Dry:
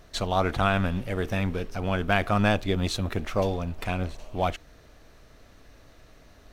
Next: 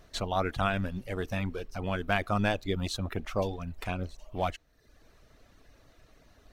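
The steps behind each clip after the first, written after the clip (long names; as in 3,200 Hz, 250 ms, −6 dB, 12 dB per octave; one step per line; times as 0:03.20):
reverb reduction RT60 0.74 s
level −4 dB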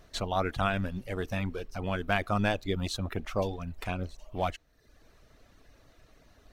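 no processing that can be heard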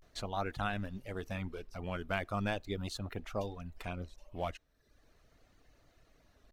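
pitch vibrato 0.4 Hz 77 cents
level −7 dB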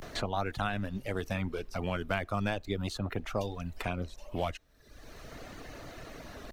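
multiband upward and downward compressor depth 70%
level +4.5 dB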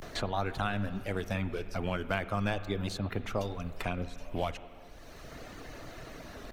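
convolution reverb RT60 2.6 s, pre-delay 41 ms, DRR 12 dB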